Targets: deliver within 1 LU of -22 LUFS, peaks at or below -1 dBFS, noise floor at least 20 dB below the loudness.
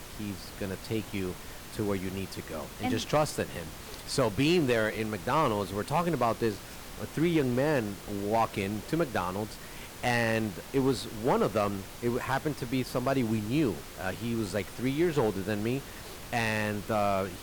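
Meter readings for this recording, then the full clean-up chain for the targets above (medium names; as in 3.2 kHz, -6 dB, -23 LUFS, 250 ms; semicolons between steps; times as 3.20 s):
clipped samples 0.6%; clipping level -19.0 dBFS; noise floor -44 dBFS; noise floor target -51 dBFS; loudness -30.5 LUFS; peak level -19.0 dBFS; loudness target -22.0 LUFS
-> clip repair -19 dBFS; noise print and reduce 7 dB; trim +8.5 dB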